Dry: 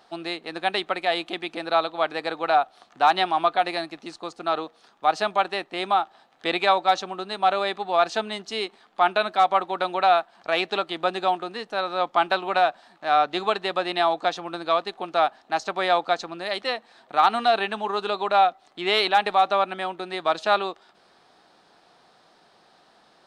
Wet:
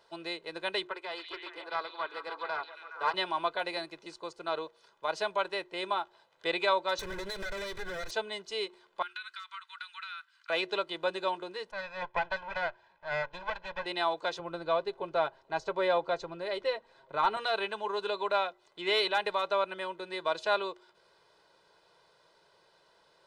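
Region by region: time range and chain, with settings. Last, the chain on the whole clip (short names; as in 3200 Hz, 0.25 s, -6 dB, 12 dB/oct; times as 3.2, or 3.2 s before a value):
0.87–3.14 rippled Chebyshev high-pass 280 Hz, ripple 9 dB + delay with a stepping band-pass 0.139 s, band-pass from 4200 Hz, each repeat -0.7 oct, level -1.5 dB + Doppler distortion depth 0.15 ms
6.99–8.11 minimum comb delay 0.5 ms + compressor 12:1, threshold -34 dBFS + sample leveller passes 3
9.02–10.5 elliptic high-pass 1300 Hz, stop band 60 dB + compressor 12:1, threshold -30 dBFS
11.71–13.86 minimum comb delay 1.2 ms + LPF 2600 Hz + low shelf 230 Hz -9 dB
14.39–17.37 tilt -2.5 dB/oct + comb 7.4 ms, depth 32%
whole clip: comb 2 ms, depth 87%; de-hum 120.1 Hz, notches 3; gain -9 dB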